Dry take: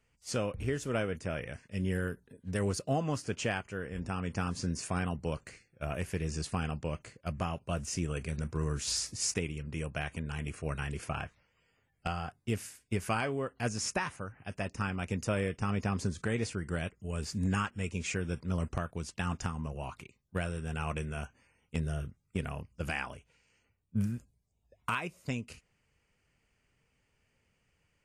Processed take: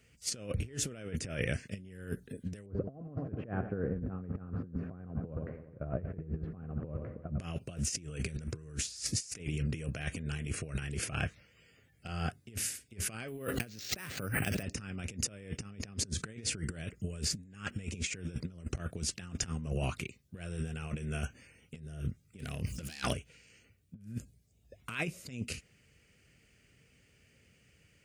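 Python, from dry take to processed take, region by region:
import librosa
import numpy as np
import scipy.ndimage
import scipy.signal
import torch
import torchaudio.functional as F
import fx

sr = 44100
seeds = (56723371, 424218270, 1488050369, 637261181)

y = fx.chain(x, sr, fx.lowpass(hz=1200.0, slope=24),
    fx.echo_feedback(ms=87, feedback_pct=57, wet_db=-16.0), at=(2.66, 7.4))
y = fx.chain(y, sr, fx.highpass(hz=80.0, slope=6),
    fx.resample_bad(factor=4, down='none', up='hold'),
    fx.sustainer(db_per_s=25.0), at=(13.28, 14.63))
y = fx.chain(y, sr, fx.self_delay(depth_ms=0.14),
    fx.high_shelf(hz=3000.0, db=9.5),
    fx.env_flatten(amount_pct=50), at=(22.39, 23.13))
y = scipy.signal.sosfilt(scipy.signal.butter(2, 59.0, 'highpass', fs=sr, output='sos'), y)
y = fx.peak_eq(y, sr, hz=940.0, db=-14.5, octaves=0.79)
y = fx.over_compress(y, sr, threshold_db=-41.0, ratio=-0.5)
y = F.gain(torch.from_numpy(y), 4.5).numpy()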